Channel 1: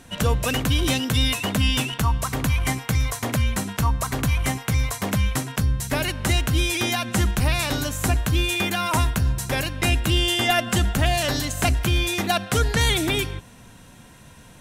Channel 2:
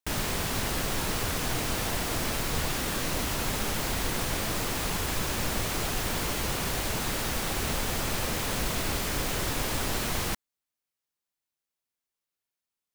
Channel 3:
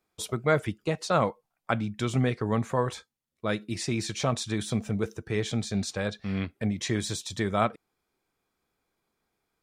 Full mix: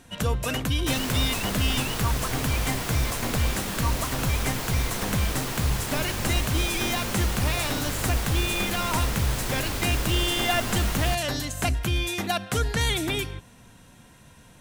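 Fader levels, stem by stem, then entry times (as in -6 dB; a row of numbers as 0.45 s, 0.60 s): -4.5 dB, -1.0 dB, -16.5 dB; 0.00 s, 0.80 s, 0.00 s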